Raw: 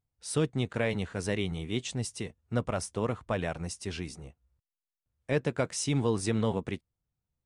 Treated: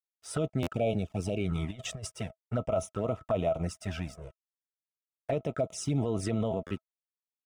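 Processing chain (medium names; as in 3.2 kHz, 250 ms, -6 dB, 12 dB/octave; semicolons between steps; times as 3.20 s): 0.72–1.44 s: spectral selection erased 900–2200 Hz; 5.58–5.98 s: peaking EQ 1.6 kHz -12.5 dB 1.4 oct; crossover distortion -54 dBFS; 1.55–2.07 s: compressor with a negative ratio -37 dBFS, ratio -0.5; treble shelf 4.3 kHz -7.5 dB; band-stop 4.2 kHz, Q 5.7; small resonant body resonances 650/1300 Hz, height 18 dB, ringing for 70 ms; touch-sensitive flanger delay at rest 2.8 ms, full sweep at -23.5 dBFS; peak limiter -25.5 dBFS, peak gain reduction 13 dB; buffer glitch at 0.62/6.66 s, samples 512, times 3; trim +5 dB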